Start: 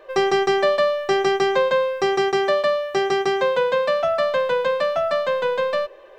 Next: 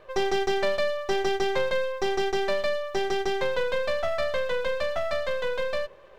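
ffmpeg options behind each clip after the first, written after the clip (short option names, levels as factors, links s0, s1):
-af "aeval=exprs='if(lt(val(0),0),0.251*val(0),val(0))':c=same,volume=0.75"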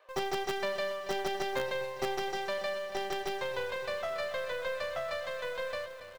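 -filter_complex "[0:a]highpass=77,aecho=1:1:281|562|843|1124|1405|1686:0.251|0.138|0.076|0.0418|0.023|0.0126,acrossover=split=520|1400[s0][s1][s2];[s0]acrusher=bits=5:dc=4:mix=0:aa=0.000001[s3];[s3][s1][s2]amix=inputs=3:normalize=0,volume=0.473"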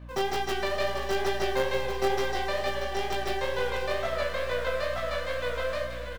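-filter_complex "[0:a]aeval=exprs='val(0)+0.00398*(sin(2*PI*60*n/s)+sin(2*PI*2*60*n/s)/2+sin(2*PI*3*60*n/s)/3+sin(2*PI*4*60*n/s)/4+sin(2*PI*5*60*n/s)/5)':c=same,flanger=delay=16:depth=7.1:speed=2.2,asplit=2[s0][s1];[s1]aecho=0:1:171|534|636:0.266|0.211|0.376[s2];[s0][s2]amix=inputs=2:normalize=0,volume=2.24"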